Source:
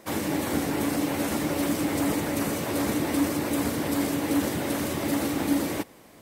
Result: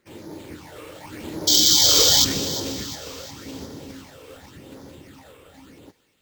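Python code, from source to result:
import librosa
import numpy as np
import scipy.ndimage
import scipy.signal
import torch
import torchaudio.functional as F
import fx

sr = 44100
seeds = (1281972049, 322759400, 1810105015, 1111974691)

p1 = fx.doppler_pass(x, sr, speed_mps=20, closest_m=3.9, pass_at_s=2.07)
p2 = p1 + 0.31 * np.pad(p1, (int(2.2 * sr / 1000.0), 0))[:len(p1)]
p3 = fx.rider(p2, sr, range_db=4, speed_s=2.0)
p4 = p2 + F.gain(torch.from_numpy(p3), 0.5).numpy()
p5 = fx.phaser_stages(p4, sr, stages=8, low_hz=230.0, high_hz=2600.0, hz=0.88, feedback_pct=40)
p6 = fx.spec_paint(p5, sr, seeds[0], shape='noise', start_s=1.47, length_s=0.78, low_hz=3000.0, high_hz=6600.0, level_db=-16.0)
p7 = np.repeat(p6[::4], 4)[:len(p6)]
y = p7 + fx.echo_wet_highpass(p7, sr, ms=354, feedback_pct=49, hz=1800.0, wet_db=-13.0, dry=0)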